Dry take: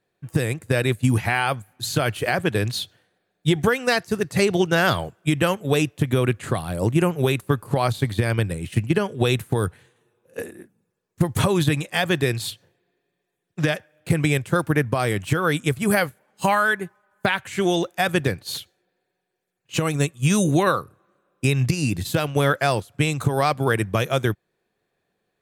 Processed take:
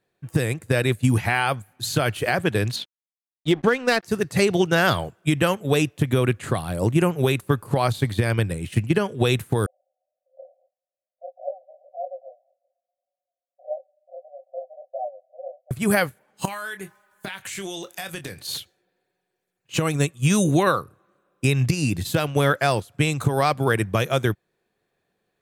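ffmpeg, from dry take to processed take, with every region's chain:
-filter_complex "[0:a]asettb=1/sr,asplit=3[s0][s1][s2];[s0]atrim=end=2.764[s3];[s1]atrim=start=2.76:end=4.03,asetpts=PTS-STARTPTS,afade=t=in:d=0.004:c=qsin,afade=t=out:st=1.266:d=0.004:c=qsin,lowshelf=f=150:t=q:w=1.5:g=-13,aeval=exprs='sgn(val(0))*max(abs(val(0))-0.00891,0)':c=same,adynamicsmooth=sensitivity=2.5:basefreq=3600[s4];[s2]atrim=start=4.026[s5];[s3][s4]acrossfade=d=0.004:c1=hsin:c2=qsin[s6];[s6][s5]acrossfade=d=0.004:c1=qsin:c2=hsin,asettb=1/sr,asplit=3[s7][s8][s9];[s7]atrim=end=9.664[s10];[s8]atrim=start=9.66:end=15.71,asetpts=PTS-STARTPTS,afade=t=in:d=0.004:c=qsin,afade=t=out:st=6.046:d=0.004:c=qsin,flanger=delay=19:depth=7.7:speed=1.7,asuperpass=centerf=630:order=20:qfactor=2.6[s11];[s9]atrim=start=15.706[s12];[s10][s11]acrossfade=d=0.004:c1=hsin:c2=qsin[s13];[s13][s12]acrossfade=d=0.004:c1=qsin:c2=hsin,asettb=1/sr,asplit=3[s14][s15][s16];[s14]atrim=end=16.454[s17];[s15]atrim=start=16.45:end=18.47,asetpts=PTS-STARTPTS,afade=t=in:d=0.004:c=qsin,afade=t=out:st=2.016:d=0.004:c=qsin,highshelf=f=2400:g=12,acompressor=threshold=0.0282:ratio=5:attack=3.2:release=140:knee=1:detection=peak,asplit=2[s18][s19];[s19]adelay=26,volume=0.316[s20];[s18][s20]amix=inputs=2:normalize=0,atrim=end_sample=89082[s21];[s16]atrim=start=18.466[s22];[s17][s21]acrossfade=d=0.004:c1=hsin:c2=qsin[s23];[s23][s22]acrossfade=d=0.004:c1=qsin:c2=hsin"

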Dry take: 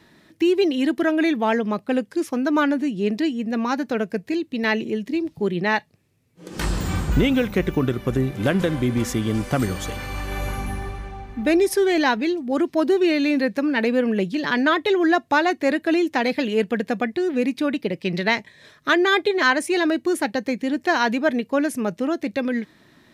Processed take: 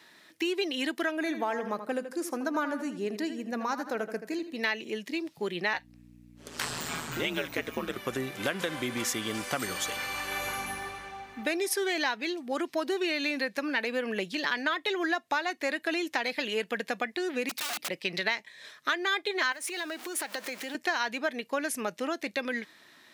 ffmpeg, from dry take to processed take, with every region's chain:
-filter_complex "[0:a]asettb=1/sr,asplit=3[s0][s1][s2];[s0]atrim=end=1.174[s3];[s1]atrim=start=1.17:end=4.57,asetpts=PTS-STARTPTS,afade=t=in:d=0.004:c=qsin,afade=t=out:st=3.396:d=0.004:c=qsin,equalizer=f=3000:t=o:w=1.5:g=-11.5,asplit=2[s4][s5];[s5]adelay=80,lowpass=f=3900:p=1,volume=0.299,asplit=2[s6][s7];[s7]adelay=80,lowpass=f=3900:p=1,volume=0.41,asplit=2[s8][s9];[s9]adelay=80,lowpass=f=3900:p=1,volume=0.41,asplit=2[s10][s11];[s11]adelay=80,lowpass=f=3900:p=1,volume=0.41[s12];[s4][s6][s8][s10][s12]amix=inputs=5:normalize=0,atrim=end_sample=149940[s13];[s2]atrim=start=4.566[s14];[s3][s13]acrossfade=d=0.004:c1=hsin:c2=qsin[s15];[s15][s14]acrossfade=d=0.004:c1=qsin:c2=hsin,asettb=1/sr,asplit=3[s16][s17][s18];[s16]atrim=end=5.734[s19];[s17]atrim=start=5.73:end=7.96,asetpts=PTS-STARTPTS,afade=t=in:d=0.004:c=qsin,afade=t=out:st=2.226:d=0.004:c=qsin,aeval=exprs='val(0)*sin(2*PI*78*n/s)':c=same,aeval=exprs='val(0)+0.02*(sin(2*PI*60*n/s)+sin(2*PI*2*60*n/s)/2+sin(2*PI*3*60*n/s)/3+sin(2*PI*4*60*n/s)/4+sin(2*PI*5*60*n/s)/5)':c=same[s20];[s18]atrim=start=7.956[s21];[s19][s20]acrossfade=d=0.004:c1=hsin:c2=qsin[s22];[s22][s21]acrossfade=d=0.004:c1=qsin:c2=hsin,asettb=1/sr,asplit=3[s23][s24][s25];[s23]atrim=end=17.494[s26];[s24]atrim=start=17.49:end=17.89,asetpts=PTS-STARTPTS,afade=t=in:d=0.004:c=qsin,afade=t=out:st=0.396:d=0.004:c=qsin,bass=f=250:g=3,treble=f=4000:g=6,acrossover=split=590|5200[s27][s28][s29];[s27]acompressor=threshold=0.0631:ratio=4[s30];[s28]acompressor=threshold=0.0178:ratio=4[s31];[s29]acompressor=threshold=0.00224:ratio=4[s32];[s30][s31][s32]amix=inputs=3:normalize=0,aeval=exprs='(mod(26.6*val(0)+1,2)-1)/26.6':c=same[s33];[s25]atrim=start=17.886[s34];[s26][s33]acrossfade=d=0.004:c1=hsin:c2=qsin[s35];[s35][s34]acrossfade=d=0.004:c1=qsin:c2=hsin,asettb=1/sr,asplit=3[s36][s37][s38];[s36]atrim=end=19.524[s39];[s37]atrim=start=19.52:end=20.75,asetpts=PTS-STARTPTS,afade=t=in:d=0.004:c=qsin,afade=t=out:st=1.226:d=0.004:c=qsin,aeval=exprs='val(0)+0.5*0.0211*sgn(val(0))':c=same,highpass=290,acompressor=threshold=0.0501:ratio=12:attack=3.2:release=140:knee=1:detection=peak[s40];[s38]atrim=start=20.746[s41];[s39][s40]acrossfade=d=0.004:c1=hsin:c2=qsin[s42];[s42][s41]acrossfade=d=0.004:c1=qsin:c2=hsin,highpass=f=1300:p=1,acompressor=threshold=0.0355:ratio=4,volume=1.33"

